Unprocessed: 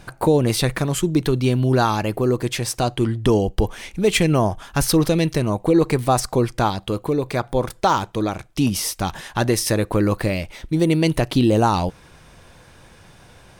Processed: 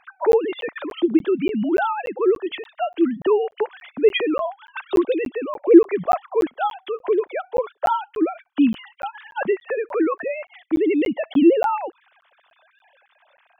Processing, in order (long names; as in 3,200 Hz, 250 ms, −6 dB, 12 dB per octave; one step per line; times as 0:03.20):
three sine waves on the formant tracks
regular buffer underruns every 0.29 s, samples 512, zero, from 0:00.32
level −1 dB